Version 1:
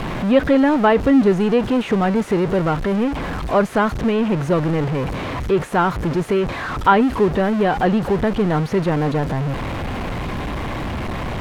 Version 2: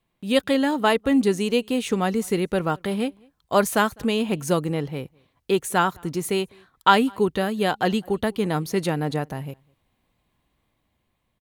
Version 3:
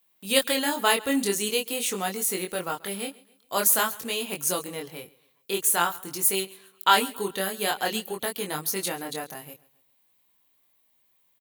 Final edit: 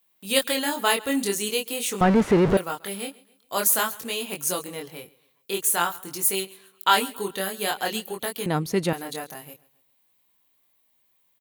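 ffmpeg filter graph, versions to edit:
-filter_complex "[2:a]asplit=3[s0][s1][s2];[s0]atrim=end=2.012[s3];[0:a]atrim=start=2.008:end=2.572[s4];[s1]atrim=start=2.568:end=8.462[s5];[1:a]atrim=start=8.458:end=8.932[s6];[s2]atrim=start=8.928[s7];[s3][s4]acrossfade=d=0.004:c1=hsin:c2=hsin[s8];[s8][s5]acrossfade=d=0.004:c1=hsin:c2=hsin[s9];[s9][s6]acrossfade=d=0.004:c1=hsin:c2=hsin[s10];[s10][s7]acrossfade=d=0.004:c1=hsin:c2=hsin"

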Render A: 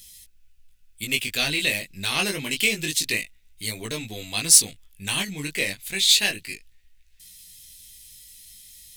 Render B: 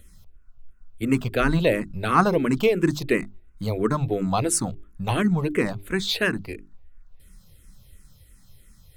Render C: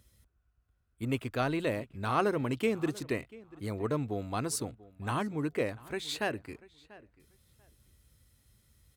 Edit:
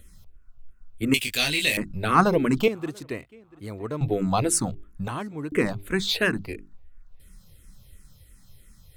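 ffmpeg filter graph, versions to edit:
-filter_complex "[2:a]asplit=2[s0][s1];[1:a]asplit=4[s2][s3][s4][s5];[s2]atrim=end=1.142[s6];[0:a]atrim=start=1.138:end=1.772[s7];[s3]atrim=start=1.768:end=2.682[s8];[s0]atrim=start=2.678:end=4.012[s9];[s4]atrim=start=4.008:end=5.082[s10];[s1]atrim=start=5.078:end=5.522[s11];[s5]atrim=start=5.518[s12];[s6][s7]acrossfade=d=0.004:c1=hsin:c2=hsin[s13];[s13][s8]acrossfade=d=0.004:c1=hsin:c2=hsin[s14];[s14][s9]acrossfade=d=0.004:c1=hsin:c2=hsin[s15];[s15][s10]acrossfade=d=0.004:c1=hsin:c2=hsin[s16];[s16][s11]acrossfade=d=0.004:c1=hsin:c2=hsin[s17];[s17][s12]acrossfade=d=0.004:c1=hsin:c2=hsin"

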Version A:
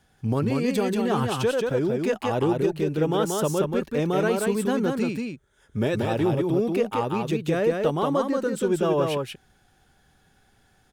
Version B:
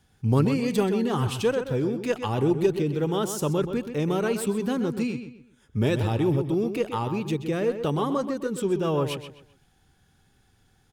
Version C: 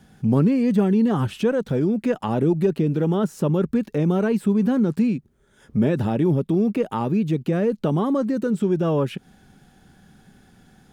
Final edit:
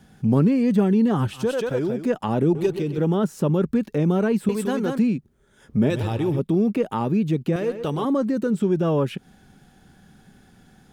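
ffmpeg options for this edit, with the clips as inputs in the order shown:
-filter_complex "[0:a]asplit=2[s0][s1];[1:a]asplit=3[s2][s3][s4];[2:a]asplit=6[s5][s6][s7][s8][s9][s10];[s5]atrim=end=1.56[s11];[s0]atrim=start=1.32:end=2.12[s12];[s6]atrim=start=1.88:end=2.552[s13];[s2]atrim=start=2.548:end=2.982[s14];[s7]atrim=start=2.978:end=4.492[s15];[s1]atrim=start=4.488:end=4.982[s16];[s8]atrim=start=4.978:end=5.902[s17];[s3]atrim=start=5.898:end=6.392[s18];[s9]atrim=start=6.388:end=7.562[s19];[s4]atrim=start=7.558:end=8.052[s20];[s10]atrim=start=8.048[s21];[s11][s12]acrossfade=d=0.24:c1=tri:c2=tri[s22];[s22][s13]acrossfade=d=0.24:c1=tri:c2=tri[s23];[s23][s14]acrossfade=d=0.004:c1=hsin:c2=hsin[s24];[s24][s15]acrossfade=d=0.004:c1=hsin:c2=hsin[s25];[s25][s16]acrossfade=d=0.004:c1=hsin:c2=hsin[s26];[s26][s17]acrossfade=d=0.004:c1=hsin:c2=hsin[s27];[s27][s18]acrossfade=d=0.004:c1=hsin:c2=hsin[s28];[s28][s19]acrossfade=d=0.004:c1=hsin:c2=hsin[s29];[s29][s20]acrossfade=d=0.004:c1=hsin:c2=hsin[s30];[s30][s21]acrossfade=d=0.004:c1=hsin:c2=hsin"

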